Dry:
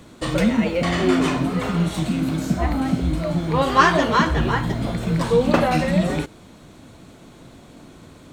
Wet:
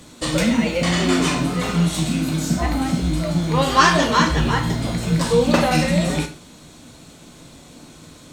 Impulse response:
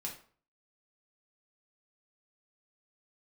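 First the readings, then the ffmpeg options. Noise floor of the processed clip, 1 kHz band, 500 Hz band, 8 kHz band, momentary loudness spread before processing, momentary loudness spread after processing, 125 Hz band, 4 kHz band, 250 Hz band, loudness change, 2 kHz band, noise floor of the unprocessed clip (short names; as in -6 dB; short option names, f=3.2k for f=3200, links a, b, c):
-45 dBFS, +0.5 dB, 0.0 dB, +9.5 dB, 8 LU, 7 LU, +2.0 dB, +5.5 dB, +1.0 dB, +1.5 dB, +2.0 dB, -46 dBFS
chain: -filter_complex "[0:a]asplit=2[a][b];[b]equalizer=f=6.2k:t=o:w=2.8:g=14[c];[1:a]atrim=start_sample=2205,highshelf=f=11k:g=7.5[d];[c][d]afir=irnorm=-1:irlink=0,volume=-1.5dB[e];[a][e]amix=inputs=2:normalize=0,volume=-4.5dB"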